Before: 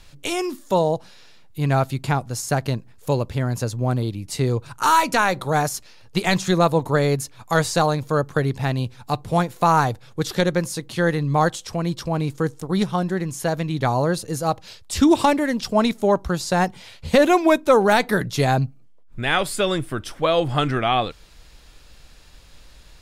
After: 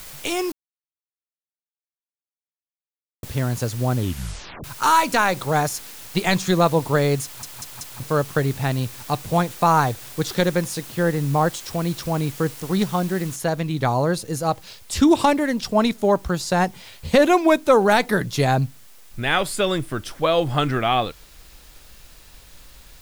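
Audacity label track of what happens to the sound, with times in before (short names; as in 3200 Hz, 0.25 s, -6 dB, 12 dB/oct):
0.520000	3.230000	mute
3.960000	3.960000	tape stop 0.68 s
7.240000	7.240000	stutter in place 0.19 s, 4 plays
10.820000	11.540000	LPF 1500 Hz 6 dB/oct
13.360000	13.360000	noise floor step -40 dB -52 dB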